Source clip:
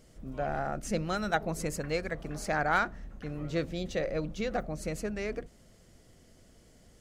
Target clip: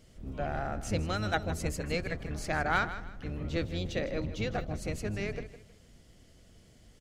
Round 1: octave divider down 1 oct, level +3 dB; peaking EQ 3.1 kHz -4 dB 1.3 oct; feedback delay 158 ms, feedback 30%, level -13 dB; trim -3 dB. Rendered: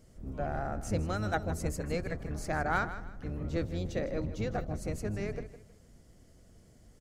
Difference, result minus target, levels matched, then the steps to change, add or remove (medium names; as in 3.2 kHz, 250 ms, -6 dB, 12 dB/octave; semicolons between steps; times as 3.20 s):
4 kHz band -6.5 dB
change: peaking EQ 3.1 kHz +6 dB 1.3 oct